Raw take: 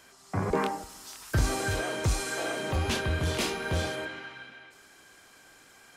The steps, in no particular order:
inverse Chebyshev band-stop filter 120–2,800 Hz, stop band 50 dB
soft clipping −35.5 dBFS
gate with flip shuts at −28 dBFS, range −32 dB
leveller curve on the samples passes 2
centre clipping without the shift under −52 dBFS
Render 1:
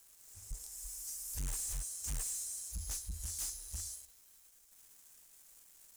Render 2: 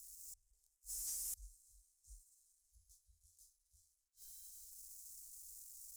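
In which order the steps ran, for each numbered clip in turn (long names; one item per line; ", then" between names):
centre clipping without the shift, then inverse Chebyshev band-stop filter, then leveller curve on the samples, then soft clipping, then gate with flip
centre clipping without the shift, then gate with flip, then leveller curve on the samples, then inverse Chebyshev band-stop filter, then soft clipping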